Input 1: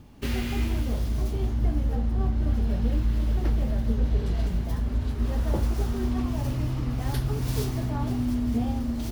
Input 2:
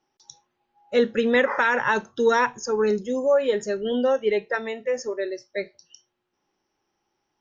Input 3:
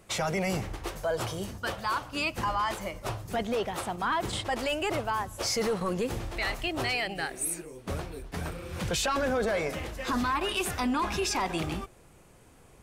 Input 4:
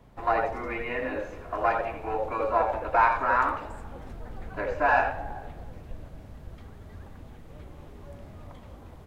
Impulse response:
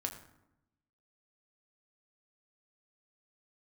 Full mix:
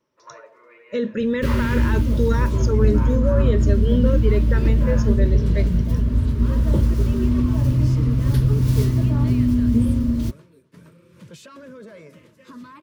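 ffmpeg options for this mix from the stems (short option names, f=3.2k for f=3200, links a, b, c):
-filter_complex "[0:a]adelay=1200,volume=0.5dB[a];[1:a]alimiter=limit=-16.5dB:level=0:latency=1:release=22,volume=-3.5dB[b];[2:a]highpass=f=130:w=0.5412,highpass=f=130:w=1.3066,adelay=2400,volume=-17dB[c];[3:a]highpass=f=450:w=0.5412,highpass=f=450:w=1.3066,volume=-16.5dB[d];[a][b][c][d]amix=inputs=4:normalize=0,asuperstop=centerf=760:order=8:qfactor=3.6,equalizer=f=130:t=o:w=2.8:g=11"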